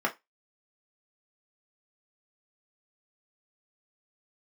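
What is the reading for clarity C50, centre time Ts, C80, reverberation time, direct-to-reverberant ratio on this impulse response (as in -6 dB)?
18.0 dB, 10 ms, 27.5 dB, 0.20 s, -2.0 dB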